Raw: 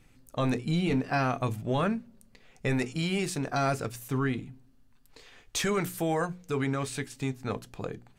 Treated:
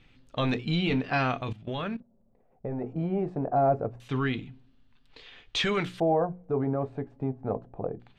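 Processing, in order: LFO low-pass square 0.25 Hz 700–3400 Hz; 1.41–2.85 level quantiser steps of 16 dB

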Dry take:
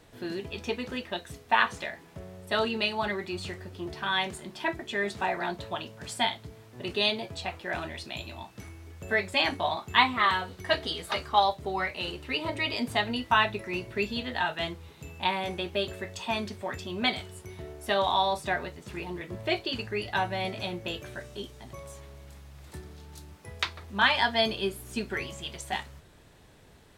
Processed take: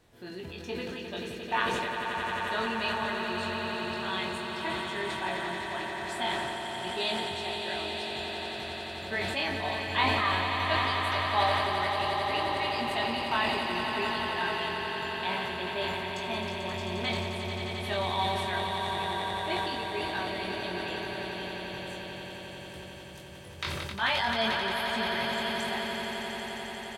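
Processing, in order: doubler 22 ms -4 dB; swelling echo 88 ms, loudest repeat 8, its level -8.5 dB; sustainer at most 22 dB/s; gain -8 dB

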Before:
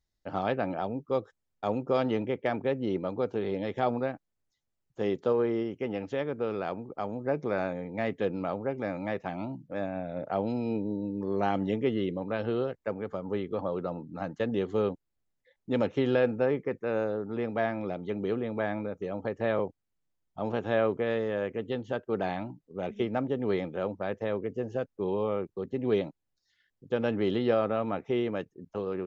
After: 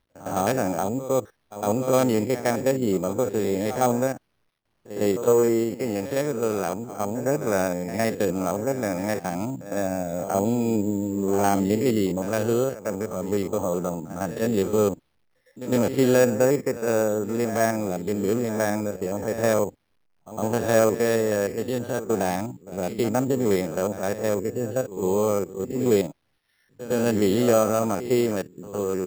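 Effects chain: stepped spectrum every 50 ms; low-pass opened by the level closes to 2600 Hz, open at -28.5 dBFS; careless resampling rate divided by 6×, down none, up hold; companded quantiser 8-bit; on a send: reverse echo 0.108 s -13 dB; on the sum: gain +7.5 dB

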